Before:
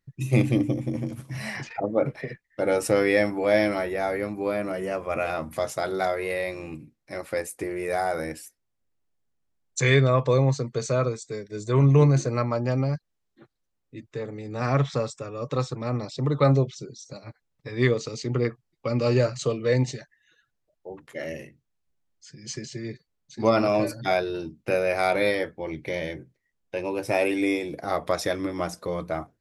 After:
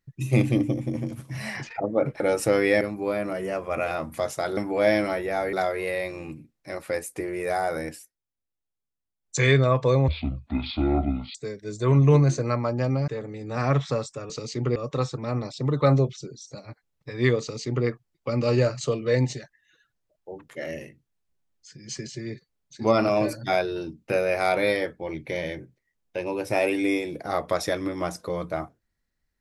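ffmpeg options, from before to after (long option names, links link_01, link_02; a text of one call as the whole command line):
ffmpeg -i in.wav -filter_complex "[0:a]asplit=12[link_01][link_02][link_03][link_04][link_05][link_06][link_07][link_08][link_09][link_10][link_11][link_12];[link_01]atrim=end=2.202[link_13];[link_02]atrim=start=2.628:end=3.242[link_14];[link_03]atrim=start=4.198:end=5.962[link_15];[link_04]atrim=start=3.238:end=4.202[link_16];[link_05]atrim=start=5.958:end=8.53,asetpts=PTS-STARTPTS,afade=type=out:start_time=2.412:duration=0.16:silence=0.266073[link_17];[link_06]atrim=start=8.53:end=9.64,asetpts=PTS-STARTPTS,volume=-11.5dB[link_18];[link_07]atrim=start=9.64:end=10.514,asetpts=PTS-STARTPTS,afade=type=in:duration=0.16:silence=0.266073[link_19];[link_08]atrim=start=10.51:end=11.22,asetpts=PTS-STARTPTS,asetrate=24696,aresample=44100,atrim=end_sample=55912,asetpts=PTS-STARTPTS[link_20];[link_09]atrim=start=11.216:end=12.952[link_21];[link_10]atrim=start=14.118:end=15.342[link_22];[link_11]atrim=start=17.988:end=18.452[link_23];[link_12]atrim=start=15.338[link_24];[link_13][link_14]acrossfade=duration=0.004:curve1=hsin:curve2=hsin[link_25];[link_25][link_15]acrossfade=duration=0.004:curve1=hsin:curve2=hsin[link_26];[link_26][link_16]acrossfade=duration=0.004:curve1=hsin:curve2=hsin[link_27];[link_17][link_18][link_19]concat=n=3:v=0:a=1[link_28];[link_27][link_28]acrossfade=duration=0.004:curve1=hsin:curve2=hsin[link_29];[link_29][link_20]acrossfade=duration=0.004:curve1=hsin:curve2=hsin[link_30];[link_30][link_21]acrossfade=duration=0.004:curve1=hsin:curve2=hsin[link_31];[link_31][link_22]acrossfade=duration=0.004:curve1=hsin:curve2=hsin[link_32];[link_32][link_23]acrossfade=duration=0.004:curve1=hsin:curve2=hsin[link_33];[link_33][link_24]acrossfade=duration=0.004:curve1=hsin:curve2=hsin" out.wav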